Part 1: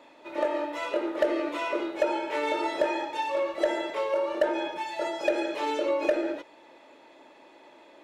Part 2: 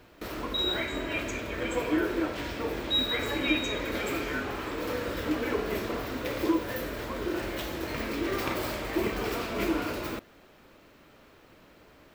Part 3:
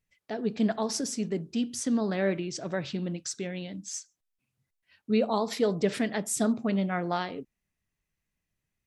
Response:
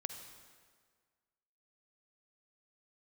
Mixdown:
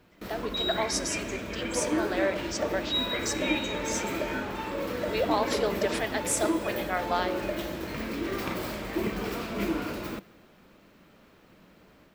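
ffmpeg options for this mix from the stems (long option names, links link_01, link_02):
-filter_complex "[0:a]adelay=1400,volume=-12.5dB[link_01];[1:a]equalizer=frequency=190:width_type=o:width=0.49:gain=9.5,volume=-8dB,asplit=2[link_02][link_03];[link_03]volume=-11.5dB[link_04];[2:a]highpass=frequency=510:width=0.5412,highpass=frequency=510:width=1.3066,volume=-4.5dB,asplit=2[link_05][link_06];[link_06]volume=-5dB[link_07];[3:a]atrim=start_sample=2205[link_08];[link_04][link_07]amix=inputs=2:normalize=0[link_09];[link_09][link_08]afir=irnorm=-1:irlink=0[link_10];[link_01][link_02][link_05][link_10]amix=inputs=4:normalize=0,dynaudnorm=framelen=140:gausssize=3:maxgain=4dB"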